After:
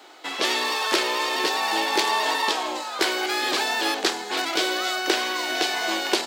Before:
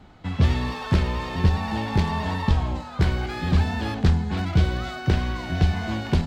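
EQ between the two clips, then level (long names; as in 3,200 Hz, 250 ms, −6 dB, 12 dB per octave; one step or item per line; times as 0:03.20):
elliptic high-pass filter 330 Hz, stop band 70 dB
high-shelf EQ 2,600 Hz +10 dB
high-shelf EQ 6,100 Hz +6.5 dB
+5.0 dB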